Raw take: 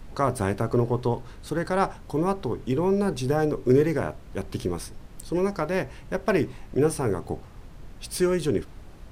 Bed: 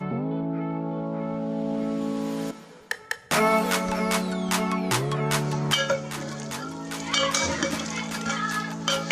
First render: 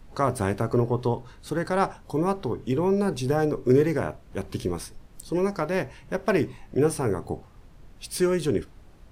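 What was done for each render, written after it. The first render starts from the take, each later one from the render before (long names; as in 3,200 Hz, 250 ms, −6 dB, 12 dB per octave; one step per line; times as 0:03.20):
noise reduction from a noise print 6 dB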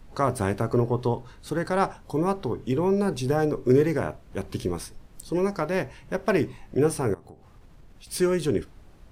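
0:07.14–0:08.07: downward compressor 4 to 1, threshold −45 dBFS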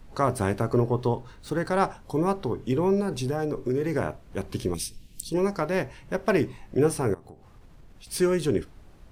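0:00.99–0:01.68: running median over 3 samples
0:03.00–0:03.93: downward compressor 3 to 1, threshold −24 dBFS
0:04.74–0:05.34: drawn EQ curve 240 Hz 0 dB, 1,300 Hz −20 dB, 2,700 Hz +7 dB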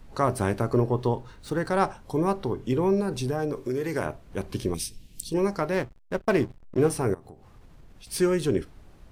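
0:03.52–0:04.06: spectral tilt +1.5 dB per octave
0:05.74–0:06.90: slack as between gear wheels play −32 dBFS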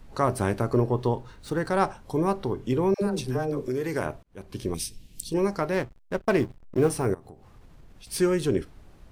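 0:02.94–0:03.68: all-pass dispersion lows, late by 79 ms, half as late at 620 Hz
0:04.23–0:04.79: fade in
0:06.39–0:07.08: one scale factor per block 7 bits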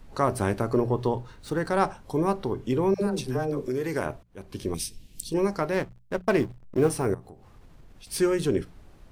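mains-hum notches 60/120/180 Hz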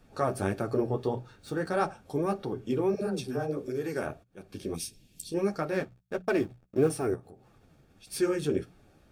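flanger 1.6 Hz, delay 5.3 ms, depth 10 ms, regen −20%
notch comb filter 1,000 Hz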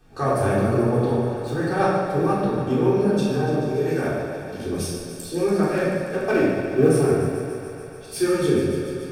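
on a send: feedback echo with a high-pass in the loop 144 ms, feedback 81%, high-pass 190 Hz, level −10 dB
on the sum: rectangular room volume 950 cubic metres, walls mixed, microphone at 3.7 metres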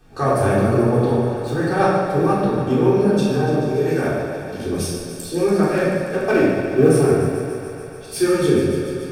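level +3.5 dB
brickwall limiter −2 dBFS, peak gain reduction 1 dB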